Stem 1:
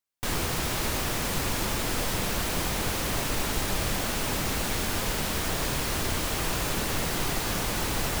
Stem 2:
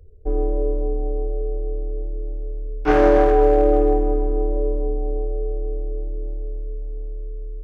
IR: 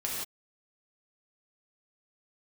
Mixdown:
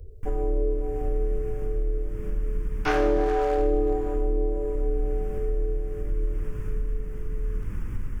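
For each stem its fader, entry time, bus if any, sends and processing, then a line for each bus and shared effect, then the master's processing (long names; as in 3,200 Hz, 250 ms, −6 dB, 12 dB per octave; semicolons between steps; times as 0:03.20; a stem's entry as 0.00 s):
−15.5 dB, 0.00 s, send −6 dB, spectral tilt −4 dB per octave; phaser with its sweep stopped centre 1,700 Hz, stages 4; amplitude tremolo 0.77 Hz, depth 52%
+3.0 dB, 0.00 s, send −9.5 dB, two-band tremolo in antiphase 1.6 Hz, depth 70%, crossover 650 Hz; high-shelf EQ 2,900 Hz +11 dB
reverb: on, pre-delay 3 ms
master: downward compressor 2.5 to 1, threshold −25 dBFS, peak gain reduction 13 dB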